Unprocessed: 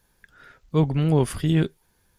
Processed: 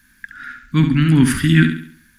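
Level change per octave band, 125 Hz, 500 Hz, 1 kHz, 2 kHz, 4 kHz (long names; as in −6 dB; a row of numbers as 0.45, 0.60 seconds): +7.0, −5.0, +2.5, +17.5, +10.5 decibels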